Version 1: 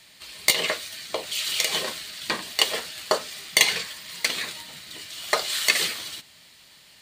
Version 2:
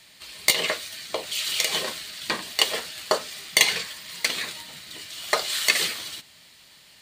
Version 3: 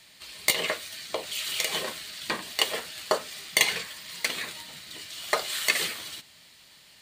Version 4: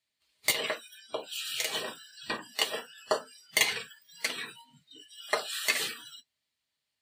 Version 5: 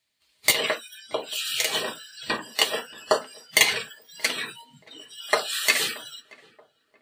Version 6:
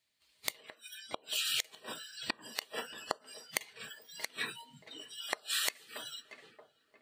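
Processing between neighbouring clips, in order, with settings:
no audible change
dynamic bell 5 kHz, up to -4 dB, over -36 dBFS, Q 0.95; trim -2 dB
spectral noise reduction 27 dB; comb of notches 180 Hz; trim -2 dB
filtered feedback delay 628 ms, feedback 48%, low-pass 990 Hz, level -20 dB; trim +7 dB
inverted gate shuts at -14 dBFS, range -29 dB; trim -4 dB

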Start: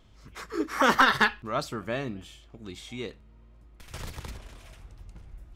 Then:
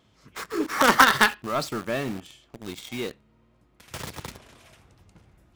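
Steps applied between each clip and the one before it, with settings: high-pass 120 Hz 12 dB/octave; in parallel at -9 dB: companded quantiser 2-bit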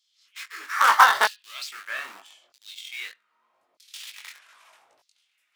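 LFO high-pass saw down 0.8 Hz 580–4900 Hz; chorus 2.2 Hz, delay 18.5 ms, depth 3.9 ms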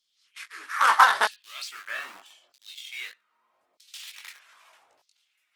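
trim -1.5 dB; Opus 24 kbps 48 kHz

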